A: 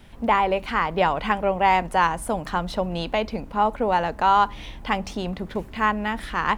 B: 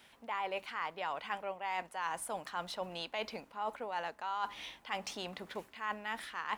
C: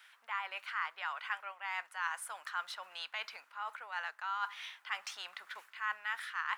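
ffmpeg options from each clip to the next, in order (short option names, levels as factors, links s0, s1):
-af "highpass=f=1200:p=1,areverse,acompressor=threshold=0.0282:ratio=6,areverse,volume=0.668"
-af "highpass=f=1400:t=q:w=2.6,volume=0.794"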